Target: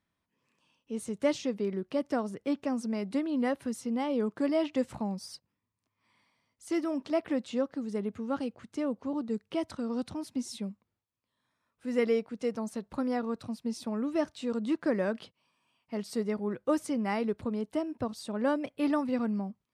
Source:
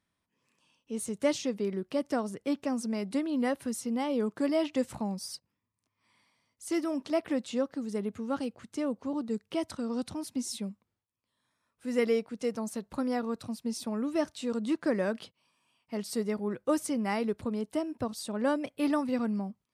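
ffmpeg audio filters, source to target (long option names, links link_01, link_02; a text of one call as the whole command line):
ffmpeg -i in.wav -af "highshelf=frequency=6300:gain=-10" out.wav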